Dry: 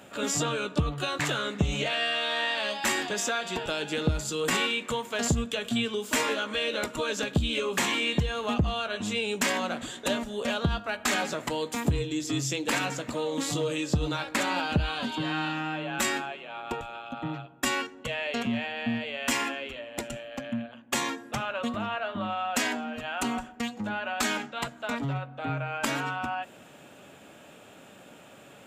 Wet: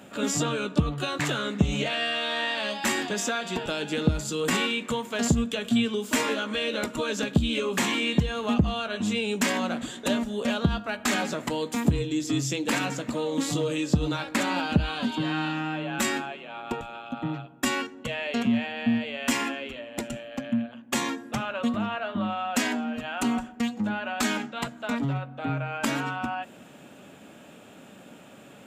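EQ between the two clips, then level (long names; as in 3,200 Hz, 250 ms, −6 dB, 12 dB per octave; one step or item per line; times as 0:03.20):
parametric band 220 Hz +6.5 dB 1.1 octaves
0.0 dB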